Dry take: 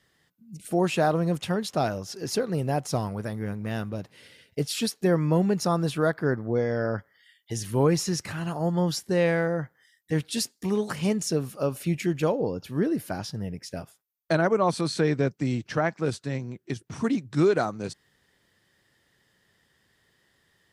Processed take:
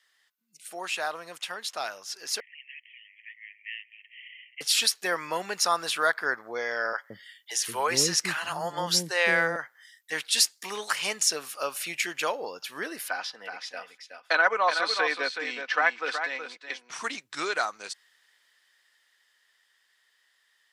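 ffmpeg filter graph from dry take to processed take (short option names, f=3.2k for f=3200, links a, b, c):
-filter_complex "[0:a]asettb=1/sr,asplit=3[a][b][c];[a]atrim=end=2.404[d];[b]atrim=start=2.4:end=4.61,asetpts=PTS-STARTPTS,afade=t=in:d=0.004:c=qsin,afade=t=out:st=2.206:d=0.004:c=qsin,asuperpass=centerf=2400:order=20:qfactor=1.8,acompressor=mode=upward:threshold=-54dB:ratio=2.5:attack=3.2:release=140:knee=2.83:detection=peak[e];[c]atrim=start=4.606[f];[d][e]acrossfade=d=0.004:c1=hsin:c2=qsin[g];[g][f]acrossfade=d=0.004:c1=qsin:c2=hsin,asettb=1/sr,asplit=3[h][i][j];[h]atrim=end=6.934[k];[i]atrim=start=6.93:end=9.56,asetpts=PTS-STARTPTS,afade=t=in:d=0.004:c=qsin,afade=t=out:st=2.626:d=0.004:c=qsin,equalizer=f=130:w=0.45:g=14.5,acrossover=split=450[l][m];[l]adelay=170[n];[n][m]amix=inputs=2:normalize=0,atrim=end_sample=115983[o];[j]atrim=start=9.556[p];[k][o]acrossfade=d=0.004:c1=hsin:c2=qsin[q];[q][p]acrossfade=d=0.004:c1=qsin:c2=hsin,asettb=1/sr,asplit=3[r][s][t];[r]atrim=end=13.084[u];[s]atrim=start=13.08:end=16.9,asetpts=PTS-STARTPTS,afade=t=in:d=0.004:c=qsin,afade=t=out:st=3.816:d=0.004:c=qsin,acrossover=split=230 4400:gain=0.141 1 0.112[v][w][x];[v][w][x]amix=inputs=3:normalize=0,aecho=1:1:4:0.46,atrim=end_sample=168462,aecho=1:1:373:0.422,atrim=end_sample=168462[y];[t]atrim=start=16.896[z];[u][y]acrossfade=d=0.004:c1=hsin:c2=qsin[aa];[aa][z]acrossfade=d=0.004:c1=qsin:c2=hsin,highpass=1.3k,highshelf=f=11k:g=-5,dynaudnorm=f=210:g=31:m=8dB,volume=1.5dB"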